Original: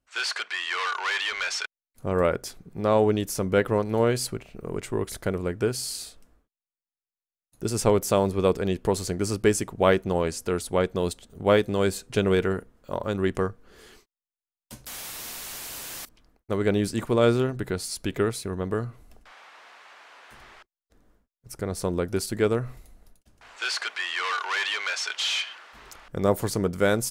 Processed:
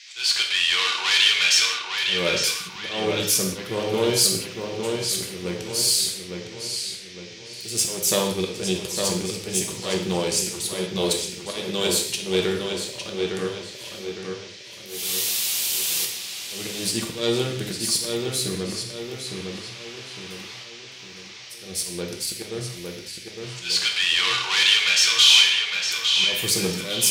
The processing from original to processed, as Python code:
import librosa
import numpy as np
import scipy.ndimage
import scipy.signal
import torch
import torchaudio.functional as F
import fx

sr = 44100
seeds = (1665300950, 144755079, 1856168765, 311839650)

p1 = fx.diode_clip(x, sr, knee_db=-22.0)
p2 = scipy.signal.sosfilt(scipy.signal.butter(2, 110.0, 'highpass', fs=sr, output='sos'), p1)
p3 = fx.notch(p2, sr, hz=670.0, q=17.0)
p4 = fx.auto_swell(p3, sr, attack_ms=260.0)
p5 = fx.high_shelf_res(p4, sr, hz=2200.0, db=11.0, q=1.5)
p6 = fx.dmg_noise_band(p5, sr, seeds[0], low_hz=1900.0, high_hz=6000.0, level_db=-47.0)
p7 = p6 + fx.echo_filtered(p6, sr, ms=858, feedback_pct=45, hz=4900.0, wet_db=-4.5, dry=0)
y = fx.rev_gated(p7, sr, seeds[1], gate_ms=220, shape='falling', drr_db=1.0)